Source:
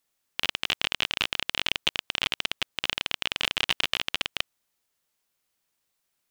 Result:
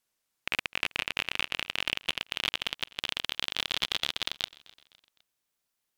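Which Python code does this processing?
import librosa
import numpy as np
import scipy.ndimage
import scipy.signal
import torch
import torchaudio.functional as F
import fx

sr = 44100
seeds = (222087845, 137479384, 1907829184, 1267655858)

p1 = fx.speed_glide(x, sr, from_pct=81, to_pct=130)
p2 = np.clip(10.0 ** (9.0 / 20.0) * p1, -1.0, 1.0) / 10.0 ** (9.0 / 20.0)
p3 = p1 + (p2 * librosa.db_to_amplitude(-3.5))
p4 = fx.echo_feedback(p3, sr, ms=255, feedback_pct=47, wet_db=-22.0)
y = p4 * librosa.db_to_amplitude(-7.5)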